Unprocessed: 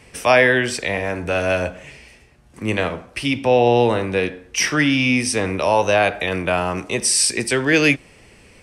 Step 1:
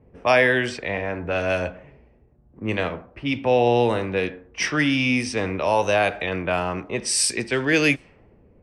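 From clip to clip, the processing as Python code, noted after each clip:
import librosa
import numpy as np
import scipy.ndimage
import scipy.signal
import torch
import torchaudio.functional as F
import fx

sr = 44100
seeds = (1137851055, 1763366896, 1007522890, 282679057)

y = fx.env_lowpass(x, sr, base_hz=520.0, full_db=-13.0)
y = y * 10.0 ** (-3.5 / 20.0)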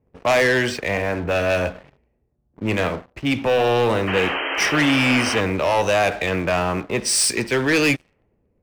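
y = fx.leveller(x, sr, passes=3)
y = fx.spec_paint(y, sr, seeds[0], shape='noise', start_s=4.07, length_s=1.34, low_hz=270.0, high_hz=3200.0, level_db=-19.0)
y = y * 10.0 ** (-6.0 / 20.0)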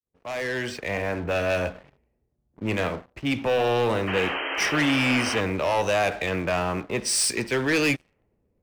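y = fx.fade_in_head(x, sr, length_s=1.06)
y = y * 10.0 ** (-4.5 / 20.0)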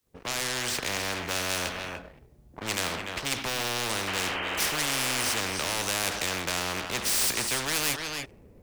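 y = x + 10.0 ** (-19.0 / 20.0) * np.pad(x, (int(294 * sr / 1000.0), 0))[:len(x)]
y = fx.spectral_comp(y, sr, ratio=4.0)
y = y * 10.0 ** (3.5 / 20.0)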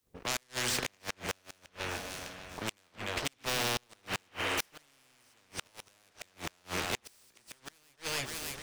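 y = fx.echo_alternate(x, sr, ms=302, hz=860.0, feedback_pct=63, wet_db=-8.0)
y = fx.gate_flip(y, sr, shuts_db=-17.0, range_db=-36)
y = y * 10.0 ** (-1.5 / 20.0)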